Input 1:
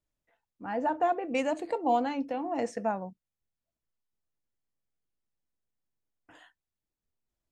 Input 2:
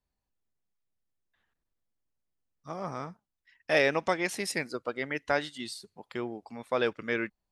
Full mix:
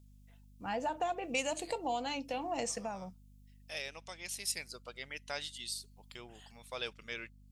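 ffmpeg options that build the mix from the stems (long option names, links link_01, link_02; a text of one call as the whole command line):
ffmpeg -i stem1.wav -i stem2.wav -filter_complex "[0:a]lowshelf=frequency=200:gain=8.5,acompressor=threshold=-28dB:ratio=10,volume=-1dB[link_01];[1:a]volume=-12.5dB,afade=type=in:start_time=4.13:duration=0.6:silence=0.421697,asplit=2[link_02][link_03];[link_03]apad=whole_len=331303[link_04];[link_01][link_04]sidechaincompress=threshold=-55dB:ratio=8:attack=43:release=390[link_05];[link_05][link_02]amix=inputs=2:normalize=0,equalizer=frequency=280:width_type=o:width=1.2:gain=-8.5,aeval=exprs='val(0)+0.00126*(sin(2*PI*50*n/s)+sin(2*PI*2*50*n/s)/2+sin(2*PI*3*50*n/s)/3+sin(2*PI*4*50*n/s)/4+sin(2*PI*5*50*n/s)/5)':channel_layout=same,aexciter=amount=4.6:drive=4.1:freq=2500" out.wav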